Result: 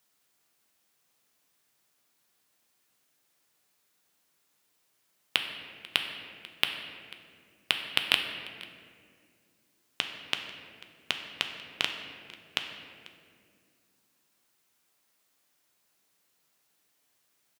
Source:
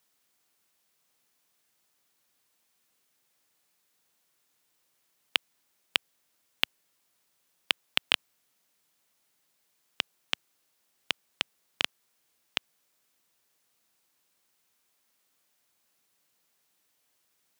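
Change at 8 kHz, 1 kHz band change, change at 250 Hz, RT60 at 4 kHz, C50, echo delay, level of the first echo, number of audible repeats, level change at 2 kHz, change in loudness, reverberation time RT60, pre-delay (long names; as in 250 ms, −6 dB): +0.5 dB, +1.5 dB, +2.0 dB, 1.4 s, 6.0 dB, 492 ms, −21.0 dB, 1, +1.5 dB, −0.5 dB, 2.1 s, 3 ms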